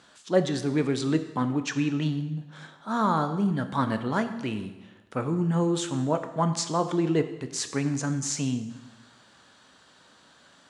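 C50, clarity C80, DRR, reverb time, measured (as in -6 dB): 11.0 dB, 12.5 dB, 8.0 dB, 1.1 s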